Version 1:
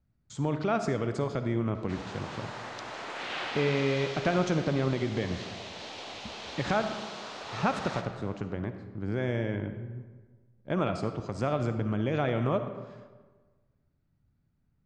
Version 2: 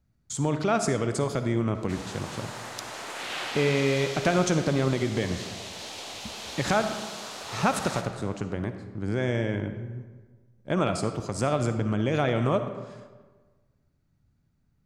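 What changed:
speech +3.0 dB; master: remove air absorption 140 m

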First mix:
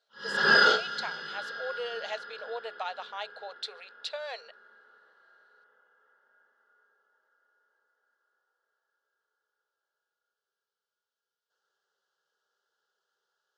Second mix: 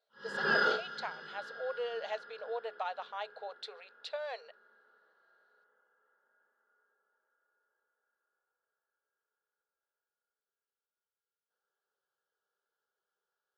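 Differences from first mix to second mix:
background -5.0 dB; master: add high shelf 2400 Hz -11 dB

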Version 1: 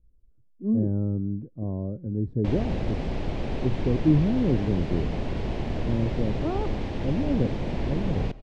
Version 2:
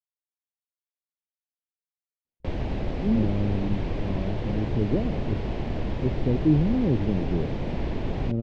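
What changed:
speech: entry +2.40 s; master: add air absorption 60 m

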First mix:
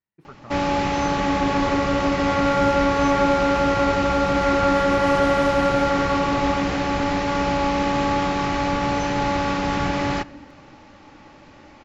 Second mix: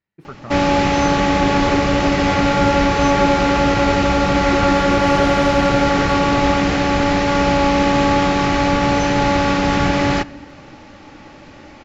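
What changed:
speech +9.0 dB; first sound +7.0 dB; master: add bell 1000 Hz -3.5 dB 0.57 oct

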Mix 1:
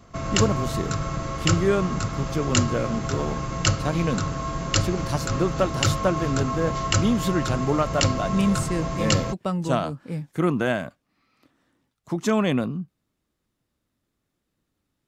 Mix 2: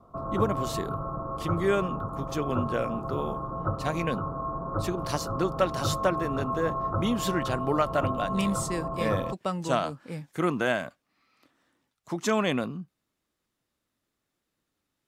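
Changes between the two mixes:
background: add steep low-pass 1300 Hz 72 dB/oct; master: add low shelf 310 Hz -9.5 dB

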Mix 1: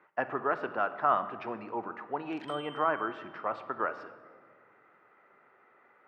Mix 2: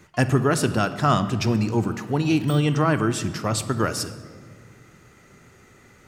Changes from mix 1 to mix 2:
speech: remove LPF 1200 Hz 12 dB/oct; first sound: unmuted; master: remove BPF 790–3000 Hz

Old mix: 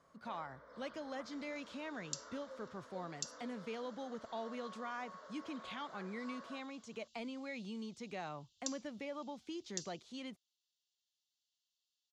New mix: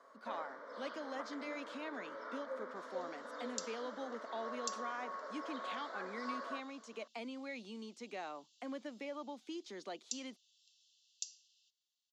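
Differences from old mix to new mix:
first sound +8.5 dB; second sound: entry +1.45 s; master: add steep high-pass 230 Hz 36 dB/oct

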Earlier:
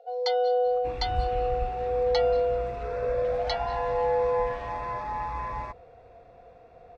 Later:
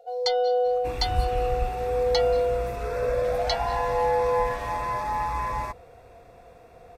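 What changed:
first sound: remove HPF 340 Hz 12 dB/oct; second sound +4.0 dB; master: remove air absorption 150 m

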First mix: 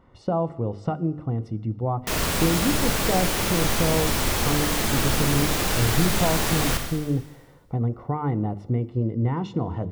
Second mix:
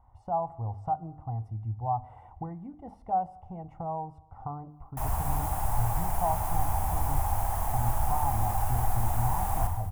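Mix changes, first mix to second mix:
background: entry +2.90 s; master: add EQ curve 100 Hz 0 dB, 140 Hz -13 dB, 360 Hz -22 dB, 520 Hz -20 dB, 790 Hz +5 dB, 1300 Hz -14 dB, 4100 Hz -29 dB, 11000 Hz -8 dB

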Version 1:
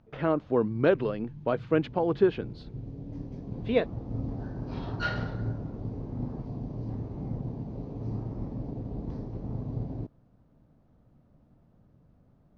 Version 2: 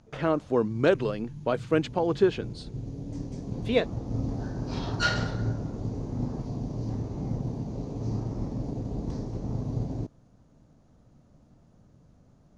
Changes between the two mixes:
background +3.0 dB; master: remove air absorption 260 m

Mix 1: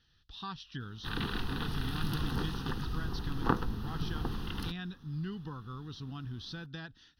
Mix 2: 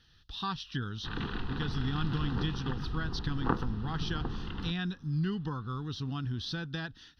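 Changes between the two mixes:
speech +6.5 dB; background: add air absorption 210 m

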